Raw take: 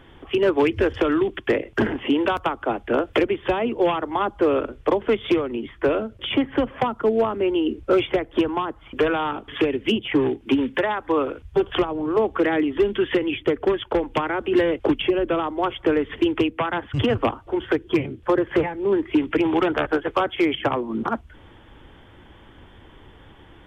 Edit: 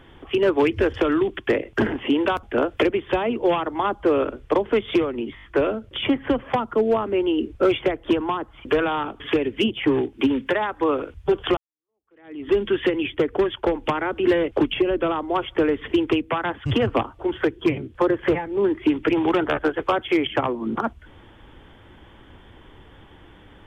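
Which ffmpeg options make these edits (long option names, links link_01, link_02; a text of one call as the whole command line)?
ffmpeg -i in.wav -filter_complex "[0:a]asplit=7[link_01][link_02][link_03][link_04][link_05][link_06][link_07];[link_01]atrim=end=2.432[link_08];[link_02]atrim=start=2.788:end=5.732[link_09];[link_03]atrim=start=5.708:end=5.732[link_10];[link_04]atrim=start=5.708:end=5.732[link_11];[link_05]atrim=start=5.708:end=5.732[link_12];[link_06]atrim=start=5.708:end=11.85,asetpts=PTS-STARTPTS,afade=type=out:start_time=6.138:duration=0.004:curve=hsin[link_13];[link_07]atrim=start=11.85,asetpts=PTS-STARTPTS,afade=type=in:duration=0.91:curve=exp[link_14];[link_08][link_09]acrossfade=duration=0.004:curve1=hsin:curve2=hsin[link_15];[link_15][link_10]acrossfade=duration=0.004:curve1=hsin:curve2=hsin[link_16];[link_16][link_11]acrossfade=duration=0.004:curve1=hsin:curve2=hsin[link_17];[link_17][link_12]acrossfade=duration=0.004:curve1=hsin:curve2=hsin[link_18];[link_13][link_14]concat=n=2:v=0:a=1[link_19];[link_18][link_19]acrossfade=duration=0.004:curve1=hsin:curve2=hsin" out.wav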